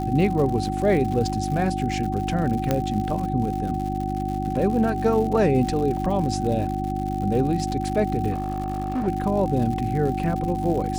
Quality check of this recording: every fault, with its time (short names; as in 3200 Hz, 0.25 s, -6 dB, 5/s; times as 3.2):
crackle 140/s -30 dBFS
hum 50 Hz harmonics 7 -28 dBFS
tone 760 Hz -28 dBFS
2.71 pop -8 dBFS
5.97 gap 3 ms
8.32–9.08 clipped -21.5 dBFS